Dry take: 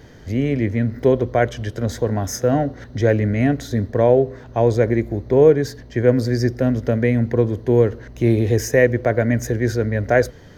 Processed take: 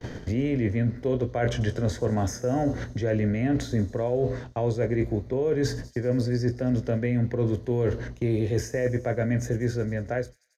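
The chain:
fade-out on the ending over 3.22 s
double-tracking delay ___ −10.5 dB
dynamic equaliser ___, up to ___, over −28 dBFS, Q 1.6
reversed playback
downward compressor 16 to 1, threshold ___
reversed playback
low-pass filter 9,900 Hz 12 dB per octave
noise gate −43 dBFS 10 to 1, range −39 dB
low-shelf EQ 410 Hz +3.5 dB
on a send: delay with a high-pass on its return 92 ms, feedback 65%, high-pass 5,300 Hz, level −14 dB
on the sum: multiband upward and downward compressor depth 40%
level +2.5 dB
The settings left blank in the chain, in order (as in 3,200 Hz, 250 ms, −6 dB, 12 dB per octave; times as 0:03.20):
24 ms, 160 Hz, −3 dB, −26 dBFS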